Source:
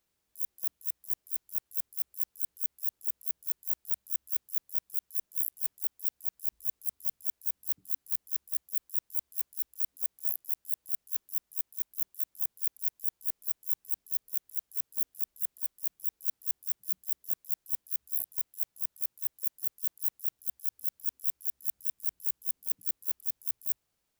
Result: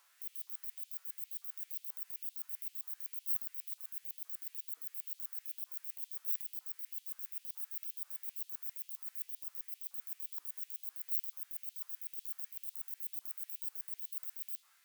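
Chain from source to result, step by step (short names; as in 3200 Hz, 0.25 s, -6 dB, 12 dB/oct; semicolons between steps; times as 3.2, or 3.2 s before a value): LFO high-pass saw up 1.3 Hz 650–2300 Hz; harmonic-percussive split percussive -17 dB; wide varispeed 1.63×; gain +18 dB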